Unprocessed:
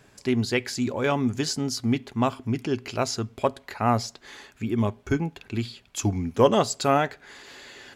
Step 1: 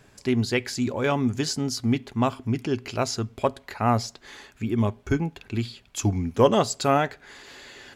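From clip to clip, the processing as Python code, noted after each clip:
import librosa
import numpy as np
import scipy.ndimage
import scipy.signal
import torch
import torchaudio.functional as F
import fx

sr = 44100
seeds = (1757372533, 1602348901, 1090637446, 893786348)

y = fx.low_shelf(x, sr, hz=81.0, db=5.5)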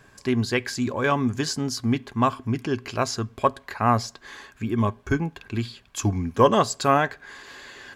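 y = fx.small_body(x, sr, hz=(1100.0, 1600.0), ring_ms=25, db=10)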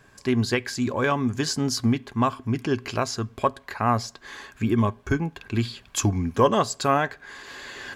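y = fx.recorder_agc(x, sr, target_db=-11.0, rise_db_per_s=8.7, max_gain_db=30)
y = y * 10.0 ** (-2.0 / 20.0)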